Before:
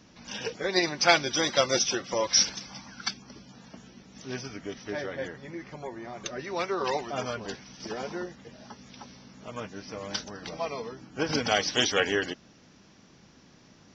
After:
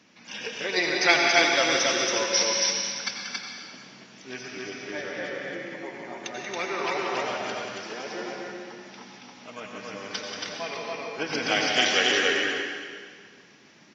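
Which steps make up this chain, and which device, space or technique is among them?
stadium PA (HPF 190 Hz 12 dB/oct; bell 2300 Hz +7.5 dB 1 oct; loudspeakers at several distances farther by 63 m -9 dB, 95 m -2 dB; reverb RT60 1.8 s, pre-delay 79 ms, DRR 1.5 dB); gain -3.5 dB

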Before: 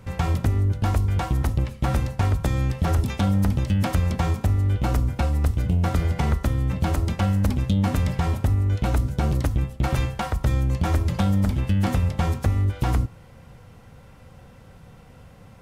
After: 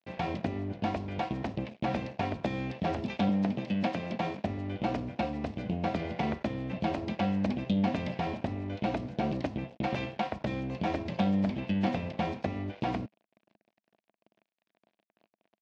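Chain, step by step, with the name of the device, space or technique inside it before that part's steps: 3.29–4.39 HPF 110 Hz 24 dB/oct; blown loudspeaker (crossover distortion -39.5 dBFS; speaker cabinet 200–4700 Hz, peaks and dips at 210 Hz +7 dB, 320 Hz +3 dB, 660 Hz +9 dB, 1300 Hz -8 dB, 2500 Hz +5 dB); gain -5 dB

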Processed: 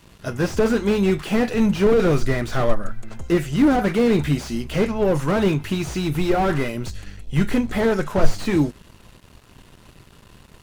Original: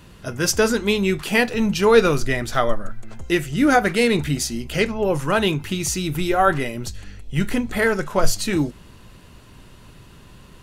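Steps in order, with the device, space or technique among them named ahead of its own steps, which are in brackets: early transistor amplifier (crossover distortion -48 dBFS; slew limiter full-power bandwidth 68 Hz); gain +2.5 dB

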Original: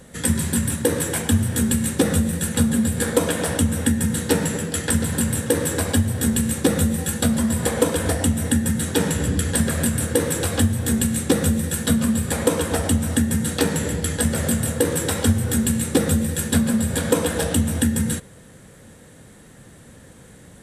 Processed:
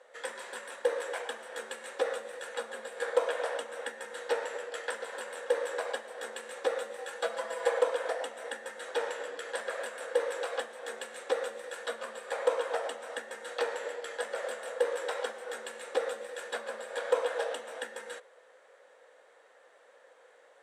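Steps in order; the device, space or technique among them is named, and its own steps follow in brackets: Chebyshev high-pass 500 Hz, order 4; 7.23–7.79 comb 6 ms, depth 90%; through cloth (LPF 6500 Hz 12 dB/oct; high shelf 2900 Hz -14 dB); gain -4 dB

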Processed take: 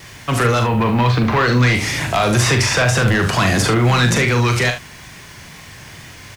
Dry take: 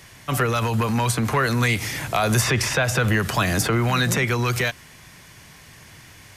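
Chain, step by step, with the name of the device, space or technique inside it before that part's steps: 0.61–1.73 LPF 2700 Hz -> 6200 Hz 24 dB/oct; compact cassette (soft clip -18 dBFS, distortion -14 dB; LPF 8300 Hz 12 dB/oct; wow and flutter; white noise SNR 35 dB); early reflections 41 ms -6.5 dB, 72 ms -11 dB; gain +7.5 dB

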